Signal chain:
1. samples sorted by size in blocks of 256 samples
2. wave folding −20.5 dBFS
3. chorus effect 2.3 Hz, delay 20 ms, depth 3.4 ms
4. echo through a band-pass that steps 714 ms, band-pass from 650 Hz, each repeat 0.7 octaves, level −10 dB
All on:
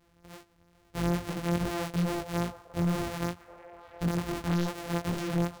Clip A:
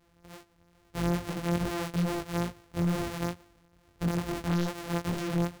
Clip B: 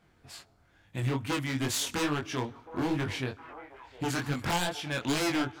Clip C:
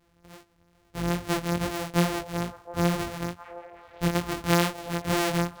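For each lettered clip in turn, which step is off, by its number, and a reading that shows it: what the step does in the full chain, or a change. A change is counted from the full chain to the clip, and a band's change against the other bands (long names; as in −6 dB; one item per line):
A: 4, echo-to-direct ratio −12.5 dB to none audible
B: 1, 8 kHz band +7.0 dB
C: 2, distortion level −2 dB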